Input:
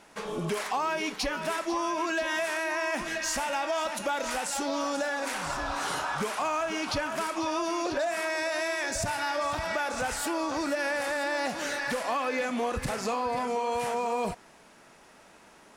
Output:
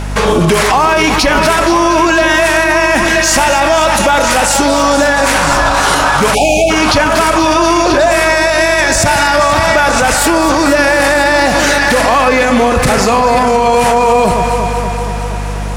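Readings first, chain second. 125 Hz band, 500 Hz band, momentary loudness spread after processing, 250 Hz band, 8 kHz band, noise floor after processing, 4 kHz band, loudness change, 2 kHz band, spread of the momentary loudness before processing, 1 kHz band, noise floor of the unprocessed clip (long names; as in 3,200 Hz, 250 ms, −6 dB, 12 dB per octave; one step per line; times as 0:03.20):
+24.5 dB, +20.5 dB, 1 LU, +21.0 dB, +20.5 dB, −17 dBFS, +20.5 dB, +20.0 dB, +20.5 dB, 2 LU, +20.5 dB, −55 dBFS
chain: mains hum 50 Hz, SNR 15 dB
on a send: delay that swaps between a low-pass and a high-pass 118 ms, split 1,900 Hz, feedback 83%, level −10.5 dB
on the sum: time-frequency box erased 0:06.35–0:06.70, 880–2,200 Hz
boost into a limiter +27.5 dB
level −1 dB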